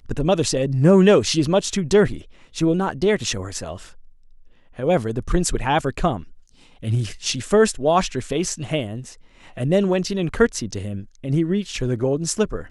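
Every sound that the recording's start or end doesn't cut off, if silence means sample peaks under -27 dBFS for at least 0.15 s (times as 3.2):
2.57–3.76
4.79–6.2
6.84–9
9.57–11.01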